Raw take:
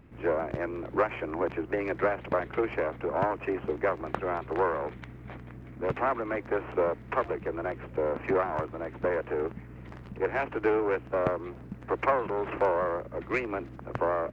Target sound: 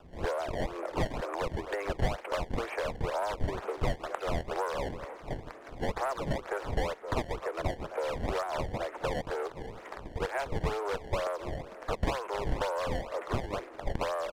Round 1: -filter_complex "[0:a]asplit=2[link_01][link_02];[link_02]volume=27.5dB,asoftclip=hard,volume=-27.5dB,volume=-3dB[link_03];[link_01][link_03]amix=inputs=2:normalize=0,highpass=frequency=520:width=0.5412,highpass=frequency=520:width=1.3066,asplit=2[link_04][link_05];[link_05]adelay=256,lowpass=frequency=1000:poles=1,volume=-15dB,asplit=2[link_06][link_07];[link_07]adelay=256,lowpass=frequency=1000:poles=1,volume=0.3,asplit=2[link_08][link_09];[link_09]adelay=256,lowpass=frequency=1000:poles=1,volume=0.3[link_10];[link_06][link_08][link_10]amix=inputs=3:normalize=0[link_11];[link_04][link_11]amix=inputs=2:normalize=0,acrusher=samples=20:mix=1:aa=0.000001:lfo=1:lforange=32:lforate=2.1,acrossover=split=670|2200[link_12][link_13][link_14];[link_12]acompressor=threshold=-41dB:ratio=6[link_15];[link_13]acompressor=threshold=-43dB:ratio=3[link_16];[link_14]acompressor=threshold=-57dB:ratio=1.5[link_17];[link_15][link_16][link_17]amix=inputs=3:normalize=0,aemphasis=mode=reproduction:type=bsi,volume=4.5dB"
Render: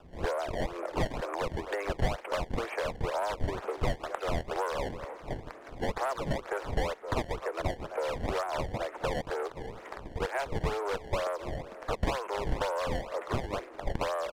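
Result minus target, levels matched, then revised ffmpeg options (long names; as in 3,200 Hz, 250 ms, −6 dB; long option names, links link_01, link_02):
gain into a clipping stage and back: distortion −6 dB
-filter_complex "[0:a]asplit=2[link_01][link_02];[link_02]volume=37.5dB,asoftclip=hard,volume=-37.5dB,volume=-3dB[link_03];[link_01][link_03]amix=inputs=2:normalize=0,highpass=frequency=520:width=0.5412,highpass=frequency=520:width=1.3066,asplit=2[link_04][link_05];[link_05]adelay=256,lowpass=frequency=1000:poles=1,volume=-15dB,asplit=2[link_06][link_07];[link_07]adelay=256,lowpass=frequency=1000:poles=1,volume=0.3,asplit=2[link_08][link_09];[link_09]adelay=256,lowpass=frequency=1000:poles=1,volume=0.3[link_10];[link_06][link_08][link_10]amix=inputs=3:normalize=0[link_11];[link_04][link_11]amix=inputs=2:normalize=0,acrusher=samples=20:mix=1:aa=0.000001:lfo=1:lforange=32:lforate=2.1,acrossover=split=670|2200[link_12][link_13][link_14];[link_12]acompressor=threshold=-41dB:ratio=6[link_15];[link_13]acompressor=threshold=-43dB:ratio=3[link_16];[link_14]acompressor=threshold=-57dB:ratio=1.5[link_17];[link_15][link_16][link_17]amix=inputs=3:normalize=0,aemphasis=mode=reproduction:type=bsi,volume=4.5dB"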